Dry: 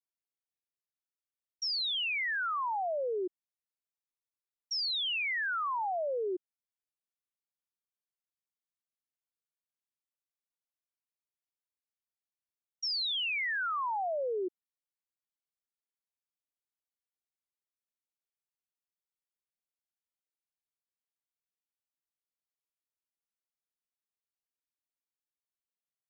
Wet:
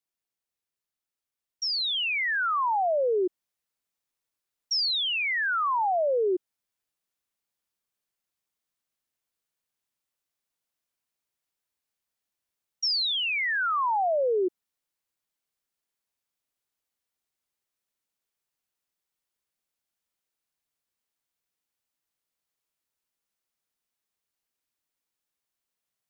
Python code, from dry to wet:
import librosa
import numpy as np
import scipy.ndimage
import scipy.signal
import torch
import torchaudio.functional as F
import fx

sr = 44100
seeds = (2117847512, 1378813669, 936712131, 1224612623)

y = fx.rider(x, sr, range_db=10, speed_s=0.5)
y = F.gain(torch.from_numpy(y), 7.0).numpy()